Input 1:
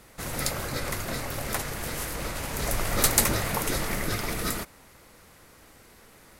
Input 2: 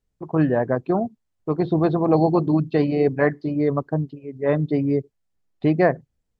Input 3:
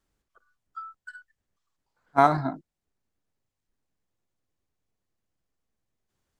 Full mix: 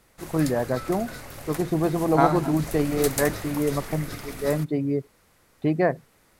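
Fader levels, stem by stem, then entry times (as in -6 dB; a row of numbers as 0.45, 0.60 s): -7.5, -4.0, -2.0 dB; 0.00, 0.00, 0.00 s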